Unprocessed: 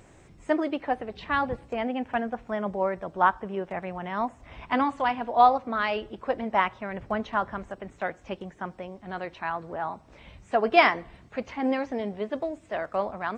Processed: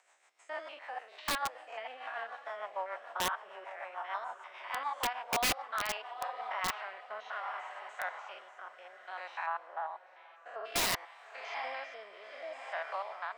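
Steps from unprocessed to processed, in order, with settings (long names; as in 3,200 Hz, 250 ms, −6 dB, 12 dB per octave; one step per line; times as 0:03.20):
spectrum averaged block by block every 100 ms
on a send: feedback delay with all-pass diffusion 886 ms, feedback 42%, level −12 dB
on the sum: rotating-speaker cabinet horn 6.7 Hz, later 0.6 Hz, at 0:06.06
automatic gain control gain up to 5.5 dB
0:09.46–0:10.65: low-pass filter 1,700 Hz 6 dB per octave
in parallel at −2 dB: downward compressor 20 to 1, threshold −27 dBFS, peak gain reduction 16.5 dB
on the sum: high-pass filter 770 Hz 24 dB per octave
wrap-around overflow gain 15.5 dB
level −8.5 dB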